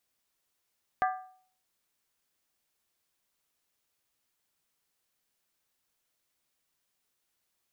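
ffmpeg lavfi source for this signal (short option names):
-f lavfi -i "aevalsrc='0.075*pow(10,-3*t/0.53)*sin(2*PI*747*t)+0.0447*pow(10,-3*t/0.42)*sin(2*PI*1190.7*t)+0.0266*pow(10,-3*t/0.363)*sin(2*PI*1595.6*t)+0.0158*pow(10,-3*t/0.35)*sin(2*PI*1715.1*t)+0.00944*pow(10,-3*t/0.325)*sin(2*PI*1981.8*t)':d=0.63:s=44100"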